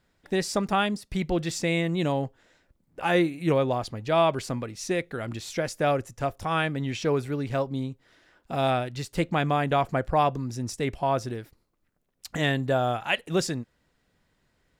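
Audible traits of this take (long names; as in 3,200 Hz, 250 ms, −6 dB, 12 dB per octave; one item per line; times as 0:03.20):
background noise floor −72 dBFS
spectral slope −4.5 dB per octave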